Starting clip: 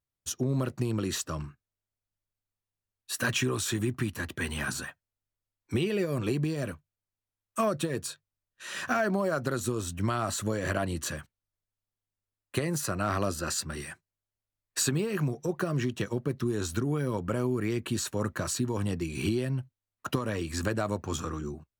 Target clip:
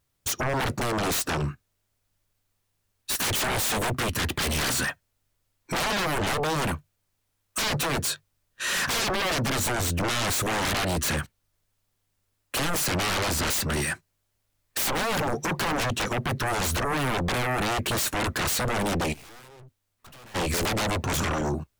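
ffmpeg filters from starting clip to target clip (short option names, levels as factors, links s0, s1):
-filter_complex "[0:a]aeval=exprs='0.188*sin(PI/2*10*val(0)/0.188)':c=same,asplit=3[s0][s1][s2];[s0]afade=t=out:st=19.12:d=0.02[s3];[s1]aeval=exprs='(tanh(89.1*val(0)+0.5)-tanh(0.5))/89.1':c=same,afade=t=in:st=19.12:d=0.02,afade=t=out:st=20.34:d=0.02[s4];[s2]afade=t=in:st=20.34:d=0.02[s5];[s3][s4][s5]amix=inputs=3:normalize=0,volume=0.376"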